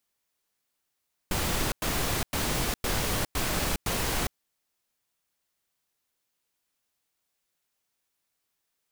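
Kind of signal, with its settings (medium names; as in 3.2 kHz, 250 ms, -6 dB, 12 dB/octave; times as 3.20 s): noise bursts pink, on 0.41 s, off 0.10 s, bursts 6, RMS -28 dBFS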